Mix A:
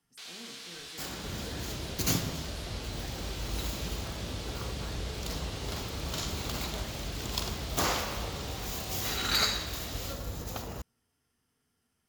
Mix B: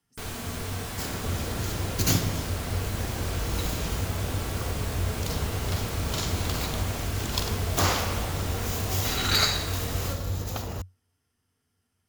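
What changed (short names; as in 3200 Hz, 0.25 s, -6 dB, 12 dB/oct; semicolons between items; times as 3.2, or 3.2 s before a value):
first sound: remove band-pass 4000 Hz, Q 1.5; second sound +4.0 dB; master: add bell 92 Hz +11.5 dB 0.29 oct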